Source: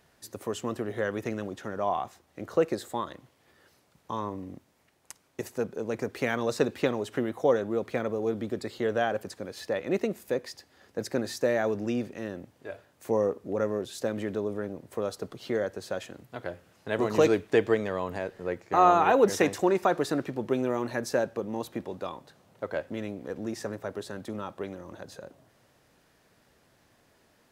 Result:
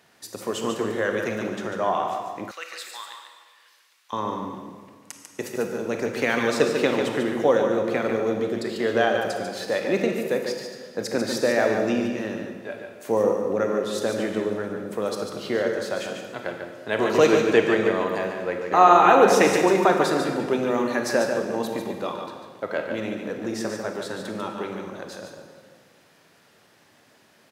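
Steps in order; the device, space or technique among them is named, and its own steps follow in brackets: PA in a hall (HPF 140 Hz 12 dB/oct; bell 2800 Hz +4 dB 3 oct; echo 0.145 s -6 dB; reverb RT60 1.7 s, pre-delay 24 ms, DRR 4.5 dB); 2.51–4.13 Chebyshev high-pass 2100 Hz, order 2; gain +3 dB

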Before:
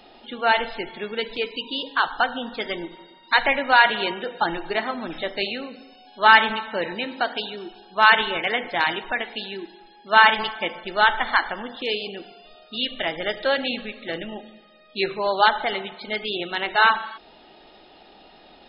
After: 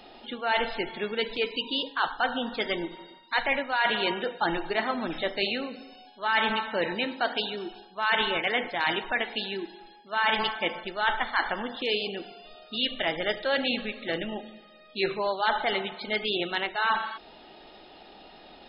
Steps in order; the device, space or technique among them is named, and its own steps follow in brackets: compression on the reversed sound (reverse; compressor 8:1, threshold -22 dBFS, peak gain reduction 14 dB; reverse)

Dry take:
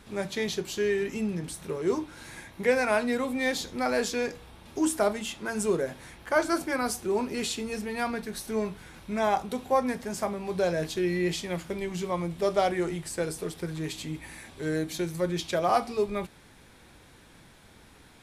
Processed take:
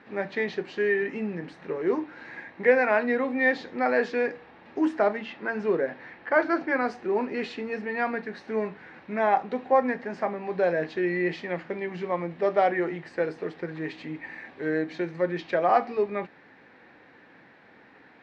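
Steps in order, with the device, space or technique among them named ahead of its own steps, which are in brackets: 5.17–6.85 LPF 5900 Hz 24 dB/oct; kitchen radio (speaker cabinet 200–3600 Hz, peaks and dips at 280 Hz +4 dB, 500 Hz +4 dB, 780 Hz +4 dB, 1800 Hz +9 dB, 3400 Hz -9 dB)

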